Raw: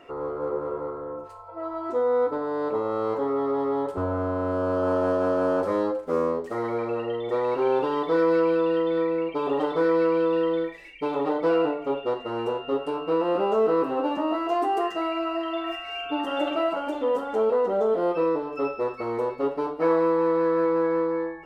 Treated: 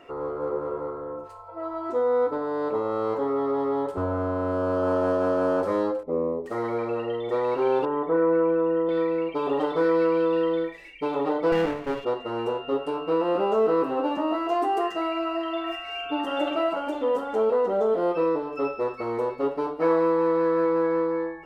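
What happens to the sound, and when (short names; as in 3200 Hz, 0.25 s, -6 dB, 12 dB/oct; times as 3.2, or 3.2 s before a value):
6.03–6.46 running mean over 29 samples
7.85–8.89 Bessel low-pass 1400 Hz, order 4
11.52–12.05 minimum comb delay 0.41 ms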